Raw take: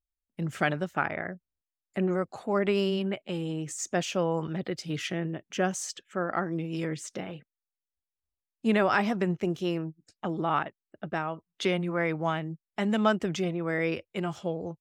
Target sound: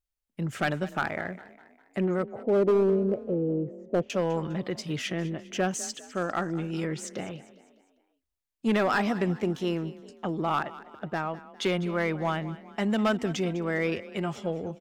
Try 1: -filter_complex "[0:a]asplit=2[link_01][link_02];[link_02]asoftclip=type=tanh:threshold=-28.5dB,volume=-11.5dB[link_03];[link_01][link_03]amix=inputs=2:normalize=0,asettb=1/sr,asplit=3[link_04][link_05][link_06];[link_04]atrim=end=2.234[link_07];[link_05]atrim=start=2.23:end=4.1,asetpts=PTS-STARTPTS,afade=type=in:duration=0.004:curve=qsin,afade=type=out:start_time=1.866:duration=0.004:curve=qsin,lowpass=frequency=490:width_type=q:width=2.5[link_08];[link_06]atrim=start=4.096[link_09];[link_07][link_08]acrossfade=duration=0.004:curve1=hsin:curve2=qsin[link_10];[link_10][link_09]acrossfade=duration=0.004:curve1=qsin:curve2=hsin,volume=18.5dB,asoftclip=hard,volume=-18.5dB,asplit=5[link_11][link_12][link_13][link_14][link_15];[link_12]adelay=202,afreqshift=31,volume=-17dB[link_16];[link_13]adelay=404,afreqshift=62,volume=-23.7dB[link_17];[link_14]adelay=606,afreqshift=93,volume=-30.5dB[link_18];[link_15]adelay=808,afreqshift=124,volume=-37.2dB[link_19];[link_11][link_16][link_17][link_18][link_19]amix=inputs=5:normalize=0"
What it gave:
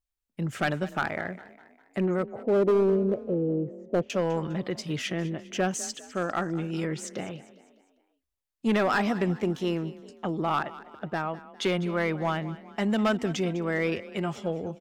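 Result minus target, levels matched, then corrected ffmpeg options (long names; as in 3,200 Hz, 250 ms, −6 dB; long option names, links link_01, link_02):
soft clipping: distortion −4 dB
-filter_complex "[0:a]asplit=2[link_01][link_02];[link_02]asoftclip=type=tanh:threshold=-36.5dB,volume=-11.5dB[link_03];[link_01][link_03]amix=inputs=2:normalize=0,asettb=1/sr,asplit=3[link_04][link_05][link_06];[link_04]atrim=end=2.234[link_07];[link_05]atrim=start=2.23:end=4.1,asetpts=PTS-STARTPTS,afade=type=in:duration=0.004:curve=qsin,afade=type=out:start_time=1.866:duration=0.004:curve=qsin,lowpass=frequency=490:width_type=q:width=2.5[link_08];[link_06]atrim=start=4.096[link_09];[link_07][link_08]acrossfade=duration=0.004:curve1=hsin:curve2=qsin[link_10];[link_10][link_09]acrossfade=duration=0.004:curve1=qsin:curve2=hsin,volume=18.5dB,asoftclip=hard,volume=-18.5dB,asplit=5[link_11][link_12][link_13][link_14][link_15];[link_12]adelay=202,afreqshift=31,volume=-17dB[link_16];[link_13]adelay=404,afreqshift=62,volume=-23.7dB[link_17];[link_14]adelay=606,afreqshift=93,volume=-30.5dB[link_18];[link_15]adelay=808,afreqshift=124,volume=-37.2dB[link_19];[link_11][link_16][link_17][link_18][link_19]amix=inputs=5:normalize=0"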